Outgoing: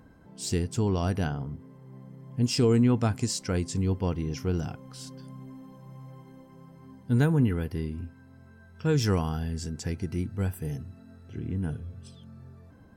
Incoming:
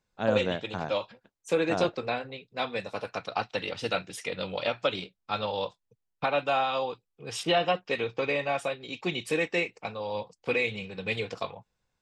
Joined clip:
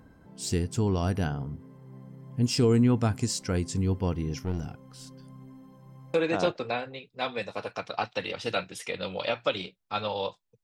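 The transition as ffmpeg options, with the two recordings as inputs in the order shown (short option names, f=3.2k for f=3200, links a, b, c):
-filter_complex "[0:a]asettb=1/sr,asplit=3[a][b][c];[a]atrim=end=4.394[d];[b]atrim=start=4.39:end=6.14,asetpts=PTS-STARTPTS,afade=t=in:d=0.004:c=qsin,afade=t=out:st=1.746:d=0.004:c=qsin,aeval=exprs='(tanh(12.6*val(0)+0.7)-tanh(0.7))/12.6':c=same[e];[c]atrim=start=6.136[f];[d][e]acrossfade=d=0.004:c1=hsin:c2=qsin[g];[g][f]acrossfade=d=0.004:c1=qsin:c2=hsin,apad=whole_dur=10.63,atrim=end=10.63,atrim=end=6.142[h];[1:a]atrim=start=1.518:end=6.01[i];[h][i]acrossfade=d=0.004:c1=hsin:c2=hsin"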